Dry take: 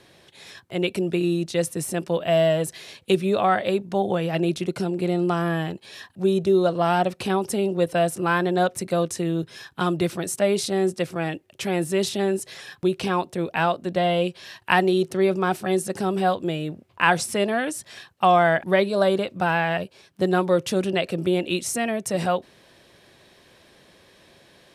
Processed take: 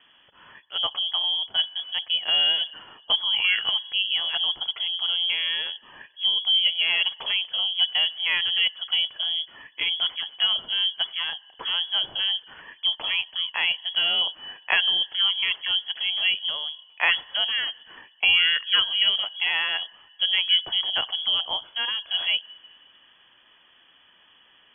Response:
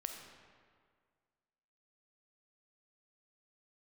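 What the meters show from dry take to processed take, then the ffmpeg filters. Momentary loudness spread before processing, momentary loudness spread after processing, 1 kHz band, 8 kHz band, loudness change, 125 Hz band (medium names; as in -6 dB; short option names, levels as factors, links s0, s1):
9 LU, 8 LU, -14.0 dB, under -40 dB, +1.0 dB, under -30 dB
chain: -filter_complex "[0:a]asplit=2[s0][s1];[s1]asplit=3[s2][s3][s4];[s2]bandpass=f=530:t=q:w=8,volume=1[s5];[s3]bandpass=f=1840:t=q:w=8,volume=0.501[s6];[s4]bandpass=f=2480:t=q:w=8,volume=0.355[s7];[s5][s6][s7]amix=inputs=3:normalize=0[s8];[1:a]atrim=start_sample=2205[s9];[s8][s9]afir=irnorm=-1:irlink=0,volume=0.596[s10];[s0][s10]amix=inputs=2:normalize=0,lowpass=f=3000:t=q:w=0.5098,lowpass=f=3000:t=q:w=0.6013,lowpass=f=3000:t=q:w=0.9,lowpass=f=3000:t=q:w=2.563,afreqshift=-3500,volume=0.708"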